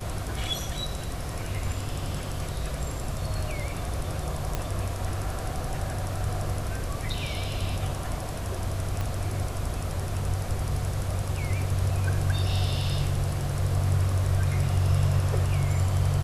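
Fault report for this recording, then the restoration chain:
0:04.55: click −13 dBFS
0:09.01: click −17 dBFS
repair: click removal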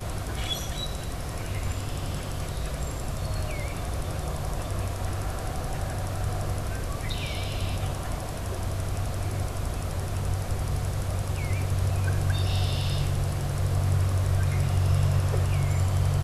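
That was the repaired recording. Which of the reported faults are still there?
0:09.01: click

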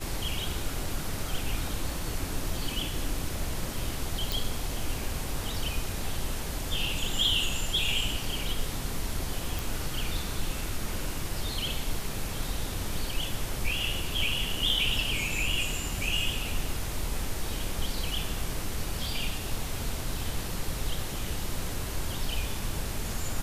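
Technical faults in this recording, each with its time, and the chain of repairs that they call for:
0:04.32: click
0:09.59: click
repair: click removal

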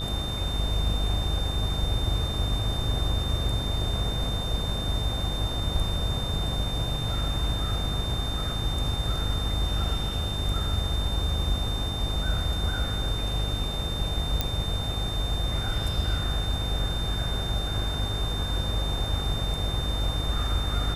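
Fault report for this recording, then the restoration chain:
mains buzz 50 Hz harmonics 29 −31 dBFS
whistle 3,600 Hz −33 dBFS
0:14.41: click −10 dBFS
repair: click removal
notch filter 3,600 Hz, Q 30
hum removal 50 Hz, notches 29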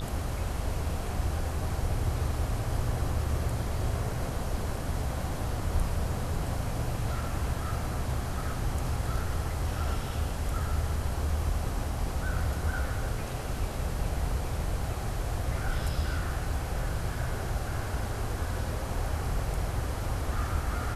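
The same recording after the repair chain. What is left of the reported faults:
0:14.41: click

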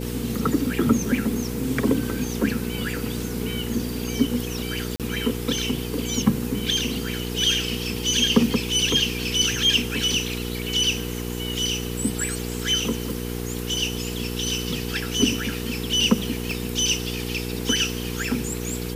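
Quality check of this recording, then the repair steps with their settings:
mains hum 60 Hz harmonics 8 −30 dBFS
0:04.96–0:05.00: drop-out 37 ms
0:16.51: click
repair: click removal
hum removal 60 Hz, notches 8
repair the gap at 0:04.96, 37 ms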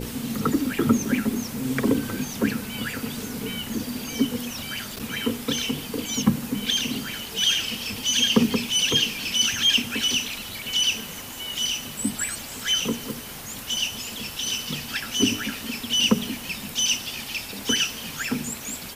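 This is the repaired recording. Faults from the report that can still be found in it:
0:16.51: click

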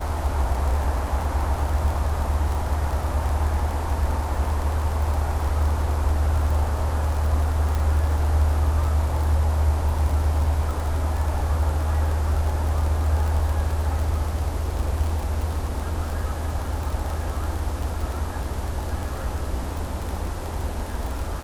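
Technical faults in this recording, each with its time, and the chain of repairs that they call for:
surface crackle 34 per second −26 dBFS
0:07.75: click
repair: click removal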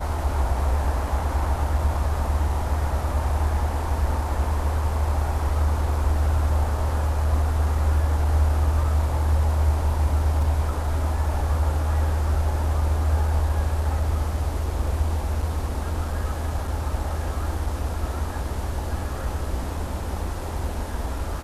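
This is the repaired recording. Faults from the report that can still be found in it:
none of them is left

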